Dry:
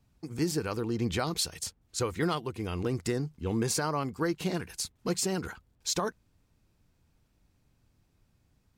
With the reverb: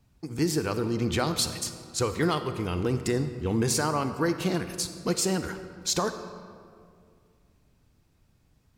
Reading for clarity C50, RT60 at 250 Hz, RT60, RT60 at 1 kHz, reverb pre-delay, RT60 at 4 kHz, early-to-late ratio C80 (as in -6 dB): 9.5 dB, 2.4 s, 2.2 s, 2.1 s, 34 ms, 1.3 s, 10.5 dB